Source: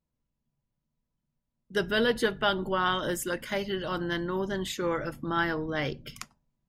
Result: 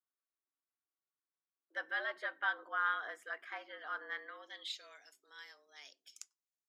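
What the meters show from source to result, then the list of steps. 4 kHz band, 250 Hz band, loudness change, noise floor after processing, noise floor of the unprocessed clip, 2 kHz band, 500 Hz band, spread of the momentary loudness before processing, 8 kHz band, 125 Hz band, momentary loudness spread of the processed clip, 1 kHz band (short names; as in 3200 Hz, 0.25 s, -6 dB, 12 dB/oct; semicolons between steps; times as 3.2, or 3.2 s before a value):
-14.0 dB, -33.0 dB, -10.0 dB, under -85 dBFS, -84 dBFS, -6.0 dB, -21.5 dB, 7 LU, under -15 dB, under -40 dB, 20 LU, -9.5 dB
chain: band-pass sweep 1300 Hz -> 6800 Hz, 4.09–5.08; frequency shift +140 Hz; gain -4 dB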